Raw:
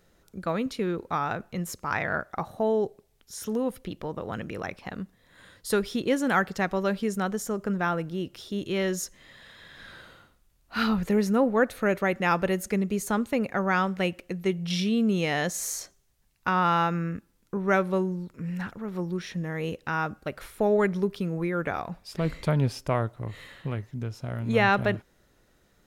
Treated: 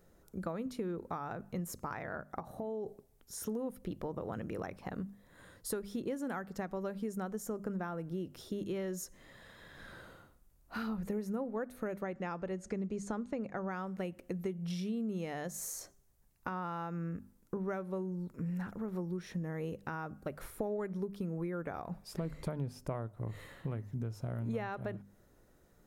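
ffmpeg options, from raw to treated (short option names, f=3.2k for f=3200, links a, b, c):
-filter_complex "[0:a]asplit=3[a][b][c];[a]afade=t=out:st=2.39:d=0.02[d];[b]acompressor=threshold=-34dB:ratio=6:attack=3.2:release=140:knee=1:detection=peak,afade=t=in:st=2.39:d=0.02,afade=t=out:st=2.86:d=0.02[e];[c]afade=t=in:st=2.86:d=0.02[f];[d][e][f]amix=inputs=3:normalize=0,asettb=1/sr,asplit=3[g][h][i];[g]atrim=end=12.034[j];[h]atrim=start=12.03:end=13.71,asetpts=PTS-STARTPTS,afade=t=in:d=0.004:c=qsin,afade=t=out:st=1.676:d=0.004:c=qsin,lowpass=f=7.3k:w=0.5412,lowpass=f=7.3k:w=1.3066[k];[i]atrim=start=13.706[l];[j][k]acrossfade=d=0.004:c1=hsin:c2=qsin[m];[m][l]acrossfade=d=0.004:c1=qsin:c2=hsin,bandreject=f=50:t=h:w=6,bandreject=f=100:t=h:w=6,bandreject=f=150:t=h:w=6,bandreject=f=200:t=h:w=6,bandreject=f=250:t=h:w=6,acompressor=threshold=-34dB:ratio=6,equalizer=f=3.2k:w=0.58:g=-10.5"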